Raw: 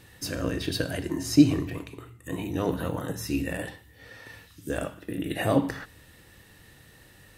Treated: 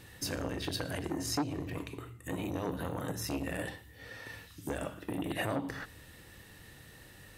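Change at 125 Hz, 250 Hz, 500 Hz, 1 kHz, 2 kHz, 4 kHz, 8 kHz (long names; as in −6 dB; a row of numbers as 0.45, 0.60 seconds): −8.0, −11.0, −7.5, −4.0, −4.5, −4.5, −3.5 decibels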